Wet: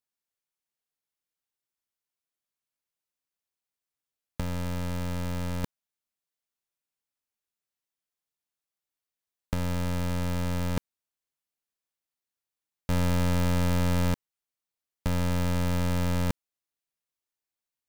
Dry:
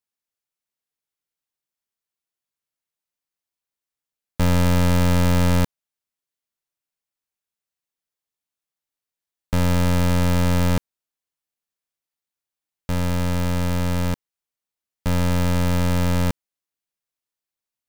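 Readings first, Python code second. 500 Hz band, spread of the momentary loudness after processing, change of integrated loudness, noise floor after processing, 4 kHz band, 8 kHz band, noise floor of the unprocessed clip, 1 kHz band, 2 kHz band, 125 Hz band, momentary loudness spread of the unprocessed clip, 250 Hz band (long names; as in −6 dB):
−8.0 dB, 10 LU, −8.0 dB, below −85 dBFS, −8.0 dB, −8.0 dB, below −85 dBFS, −8.0 dB, −8.0 dB, −8.0 dB, 9 LU, −8.0 dB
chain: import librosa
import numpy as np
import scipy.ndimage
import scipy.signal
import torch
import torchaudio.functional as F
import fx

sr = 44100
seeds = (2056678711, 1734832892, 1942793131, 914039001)

y = fx.over_compress(x, sr, threshold_db=-20.0, ratio=-0.5)
y = F.gain(torch.from_numpy(y), -5.5).numpy()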